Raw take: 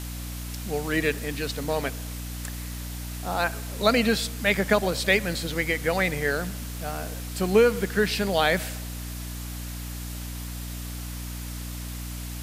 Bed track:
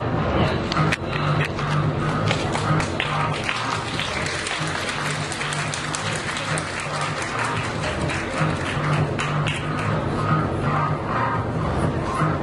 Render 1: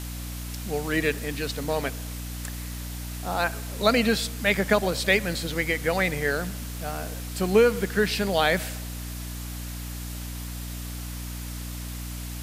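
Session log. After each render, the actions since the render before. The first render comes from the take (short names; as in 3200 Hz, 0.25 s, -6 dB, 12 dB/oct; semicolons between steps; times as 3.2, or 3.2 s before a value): nothing audible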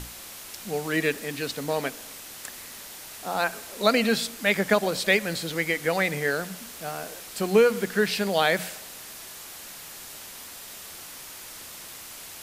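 notches 60/120/180/240/300 Hz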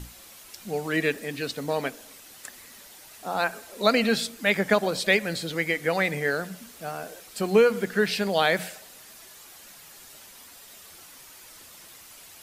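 denoiser 8 dB, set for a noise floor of -42 dBFS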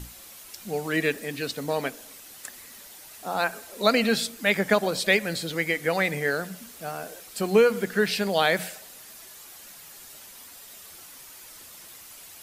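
high shelf 8500 Hz +4.5 dB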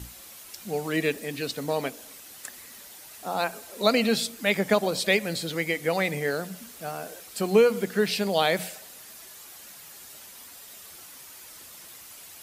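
HPF 40 Hz; dynamic EQ 1600 Hz, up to -6 dB, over -41 dBFS, Q 2.3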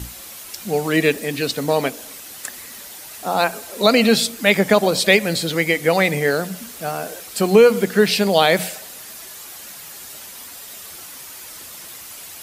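gain +9 dB; limiter -2 dBFS, peak gain reduction 3 dB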